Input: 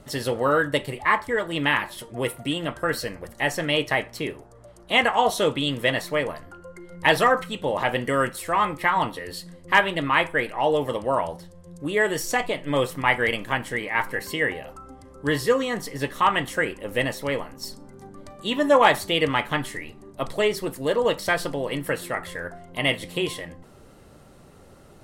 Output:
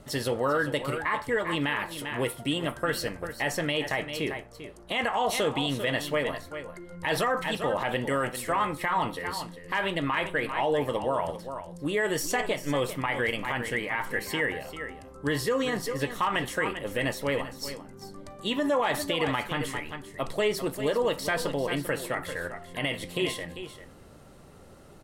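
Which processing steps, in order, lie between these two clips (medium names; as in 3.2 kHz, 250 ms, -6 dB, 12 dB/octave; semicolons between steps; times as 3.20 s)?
on a send: delay 394 ms -12.5 dB; on the sum: peak limiter -16 dBFS, peak gain reduction 11 dB; trim -1.5 dB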